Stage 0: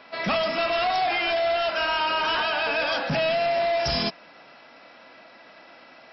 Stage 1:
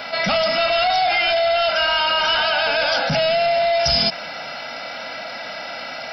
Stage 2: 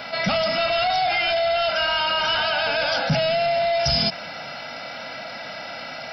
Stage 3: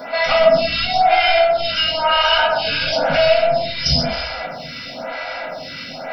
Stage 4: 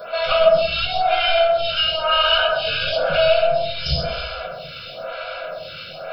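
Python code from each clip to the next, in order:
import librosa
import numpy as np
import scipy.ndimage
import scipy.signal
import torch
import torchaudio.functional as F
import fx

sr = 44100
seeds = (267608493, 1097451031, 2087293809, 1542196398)

y1 = fx.high_shelf(x, sr, hz=3900.0, db=11.5)
y1 = y1 + 0.59 * np.pad(y1, (int(1.4 * sr / 1000.0), 0))[:len(y1)]
y1 = fx.env_flatten(y1, sr, amount_pct=50)
y2 = fx.peak_eq(y1, sr, hz=120.0, db=7.5, octaves=1.6)
y2 = y2 * librosa.db_to_amplitude(-3.5)
y3 = fx.echo_feedback(y2, sr, ms=129, feedback_pct=45, wet_db=-7)
y3 = fx.room_shoebox(y3, sr, seeds[0], volume_m3=130.0, walls='furnished', distance_m=1.8)
y3 = fx.stagger_phaser(y3, sr, hz=1.0)
y3 = y3 * librosa.db_to_amplitude(3.5)
y4 = fx.fixed_phaser(y3, sr, hz=1300.0, stages=8)
y4 = y4 + 10.0 ** (-16.0 / 20.0) * np.pad(y4, (int(131 * sr / 1000.0), 0))[:len(y4)]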